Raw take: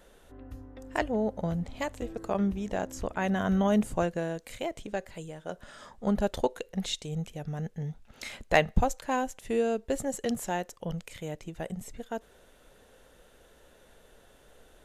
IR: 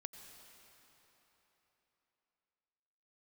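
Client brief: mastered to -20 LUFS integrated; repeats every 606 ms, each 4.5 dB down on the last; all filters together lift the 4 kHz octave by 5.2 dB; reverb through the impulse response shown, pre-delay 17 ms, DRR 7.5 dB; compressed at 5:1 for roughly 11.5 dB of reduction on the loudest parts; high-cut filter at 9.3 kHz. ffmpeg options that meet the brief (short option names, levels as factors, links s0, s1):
-filter_complex "[0:a]lowpass=9300,equalizer=f=4000:t=o:g=6.5,acompressor=threshold=0.0355:ratio=5,aecho=1:1:606|1212|1818|2424|3030|3636|4242|4848|5454:0.596|0.357|0.214|0.129|0.0772|0.0463|0.0278|0.0167|0.01,asplit=2[s0][s1];[1:a]atrim=start_sample=2205,adelay=17[s2];[s1][s2]afir=irnorm=-1:irlink=0,volume=0.668[s3];[s0][s3]amix=inputs=2:normalize=0,volume=5.01"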